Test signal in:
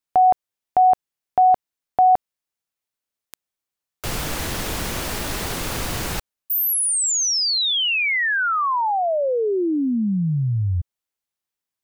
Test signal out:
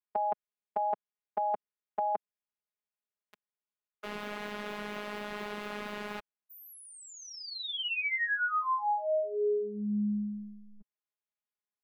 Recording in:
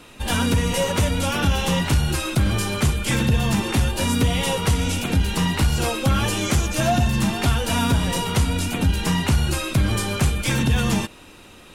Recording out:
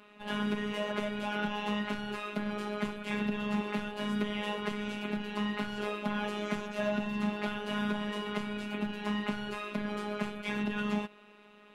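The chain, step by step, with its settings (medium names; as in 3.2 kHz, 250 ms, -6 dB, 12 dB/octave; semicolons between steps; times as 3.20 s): three-band isolator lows -20 dB, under 160 Hz, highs -22 dB, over 3.2 kHz; robot voice 208 Hz; trim -6.5 dB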